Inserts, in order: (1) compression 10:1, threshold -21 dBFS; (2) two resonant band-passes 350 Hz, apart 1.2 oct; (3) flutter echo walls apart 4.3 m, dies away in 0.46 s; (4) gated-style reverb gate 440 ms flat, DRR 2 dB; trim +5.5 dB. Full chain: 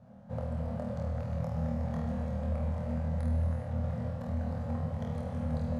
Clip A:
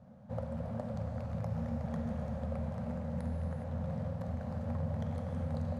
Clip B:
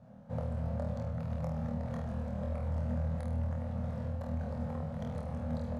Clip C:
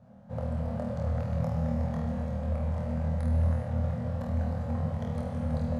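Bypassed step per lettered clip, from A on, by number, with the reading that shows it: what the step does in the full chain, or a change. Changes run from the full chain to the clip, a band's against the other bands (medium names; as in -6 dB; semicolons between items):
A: 3, echo-to-direct 3.0 dB to -2.0 dB; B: 4, echo-to-direct 3.0 dB to -0.5 dB; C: 1, mean gain reduction 2.5 dB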